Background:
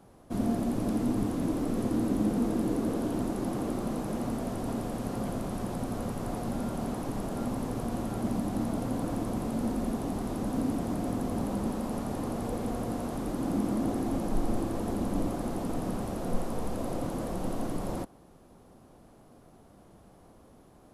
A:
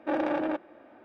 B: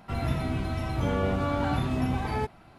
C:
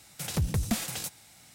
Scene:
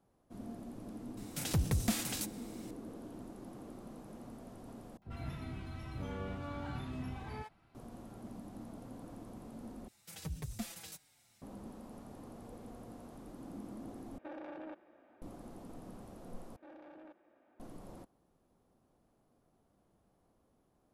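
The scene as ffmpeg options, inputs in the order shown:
-filter_complex "[3:a]asplit=2[a][b];[1:a]asplit=2[c][d];[0:a]volume=-17.5dB[e];[2:a]acrossover=split=630[f][g];[g]adelay=50[h];[f][h]amix=inputs=2:normalize=0[i];[b]asplit=2[j][k];[k]adelay=5.2,afreqshift=-1.5[l];[j][l]amix=inputs=2:normalize=1[m];[c]acompressor=threshold=-31dB:ratio=6:attack=3.2:release=140:knee=1:detection=peak[n];[d]acompressor=threshold=-36dB:ratio=3:attack=0.38:release=44:knee=1:detection=rms[o];[e]asplit=5[p][q][r][s][t];[p]atrim=end=4.974[u];[i]atrim=end=2.78,asetpts=PTS-STARTPTS,volume=-14dB[v];[q]atrim=start=7.746:end=9.884[w];[m]atrim=end=1.54,asetpts=PTS-STARTPTS,volume=-11dB[x];[r]atrim=start=11.416:end=14.184[y];[n]atrim=end=1.04,asetpts=PTS-STARTPTS,volume=-11dB[z];[s]atrim=start=15.216:end=16.564[aa];[o]atrim=end=1.04,asetpts=PTS-STARTPTS,volume=-16dB[ab];[t]atrim=start=17.596[ac];[a]atrim=end=1.54,asetpts=PTS-STARTPTS,volume=-3.5dB,afade=t=in:d=0.004:c=hsin,afade=t=out:st=1.536:d=0.004:c=hsin,adelay=1170[ad];[u][v]acrossfade=d=0.004:c1=hsin:c2=hsin[ae];[ae][w]acrossfade=d=0.004:c1=hsin:c2=hsin[af];[af][x]acrossfade=d=0.004:c1=hsin:c2=hsin[ag];[ag][y]acrossfade=d=0.004:c1=hsin:c2=hsin[ah];[ah][z]acrossfade=d=0.004:c1=hsin:c2=hsin[ai];[ai][aa]acrossfade=d=0.004:c1=hsin:c2=hsin[aj];[aj][ab]acrossfade=d=0.004:c1=hsin:c2=hsin[ak];[ak][ac]acrossfade=d=0.004:c1=hsin:c2=hsin[al];[al][ad]amix=inputs=2:normalize=0"

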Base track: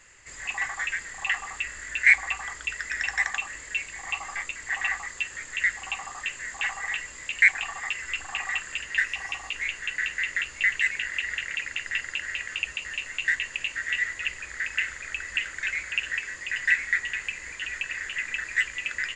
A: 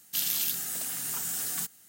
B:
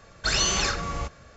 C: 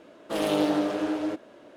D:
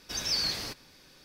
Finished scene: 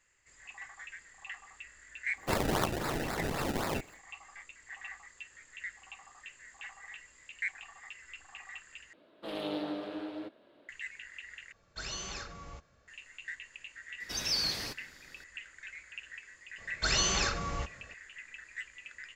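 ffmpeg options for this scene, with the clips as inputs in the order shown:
-filter_complex "[2:a]asplit=2[a][b];[0:a]volume=-17.5dB[c];[1:a]acrusher=samples=28:mix=1:aa=0.000001:lfo=1:lforange=28:lforate=3.8[d];[3:a]highshelf=f=5k:t=q:w=3:g=-7[e];[c]asplit=3[f][g][h];[f]atrim=end=8.934[i];[e]atrim=end=1.76,asetpts=PTS-STARTPTS,volume=-12dB[j];[g]atrim=start=10.686:end=11.524[k];[a]atrim=end=1.36,asetpts=PTS-STARTPTS,volume=-16.5dB[l];[h]atrim=start=12.876[m];[d]atrim=end=1.88,asetpts=PTS-STARTPTS,volume=-1dB,afade=t=in:d=0.1,afade=t=out:st=1.78:d=0.1,adelay=2140[n];[4:a]atrim=end=1.24,asetpts=PTS-STARTPTS,volume=-2dB,afade=t=in:d=0.004:c=hsin,afade=t=out:st=1.236:d=0.004:c=hsin,adelay=14000[o];[b]atrim=end=1.36,asetpts=PTS-STARTPTS,volume=-5dB,afade=t=in:d=0.004:c=hsin,afade=t=out:st=1.356:d=0.004:c=hsin,adelay=16580[p];[i][j]acrossfade=d=0.004:c1=hsin:c2=hsin[q];[q][k]acrossfade=d=0.004:c1=hsin:c2=hsin[r];[r][l]acrossfade=d=0.004:c1=hsin:c2=hsin[s];[s][m]acrossfade=d=0.004:c1=hsin:c2=hsin[t];[t][n][o][p]amix=inputs=4:normalize=0"

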